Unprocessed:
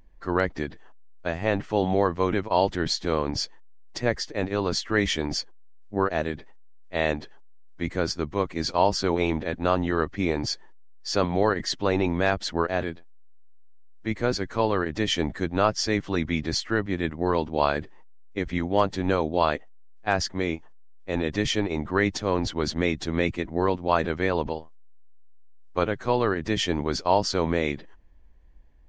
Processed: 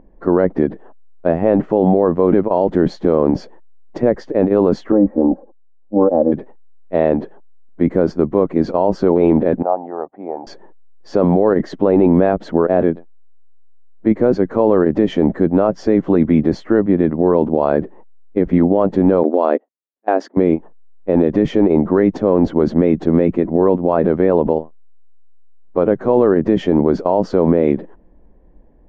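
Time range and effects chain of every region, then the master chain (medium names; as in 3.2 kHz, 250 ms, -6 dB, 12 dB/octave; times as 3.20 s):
4.92–6.32 s: inverse Chebyshev low-pass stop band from 2.9 kHz, stop band 60 dB + tilt EQ +2 dB/octave + comb 3.7 ms, depth 81%
9.62–10.47 s: band-pass filter 780 Hz, Q 5.8 + upward compressor, threshold -51 dBFS
19.23–20.37 s: gate -32 dBFS, range -16 dB + brick-wall FIR high-pass 220 Hz
whole clip: FFT filter 110 Hz 0 dB, 180 Hz +12 dB, 540 Hz +13 dB, 5.1 kHz -19 dB; peak limiter -8.5 dBFS; trim +5 dB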